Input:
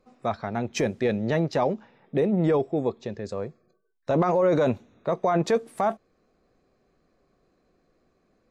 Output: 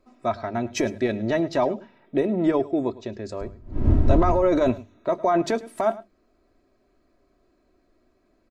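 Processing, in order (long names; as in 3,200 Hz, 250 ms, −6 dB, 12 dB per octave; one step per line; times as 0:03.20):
0:03.40–0:04.70: wind on the microphone 130 Hz −26 dBFS
low-shelf EQ 160 Hz +3 dB
mains-hum notches 50/100/150/200 Hz
comb filter 3.1 ms, depth 63%
on a send: single-tap delay 106 ms −19 dB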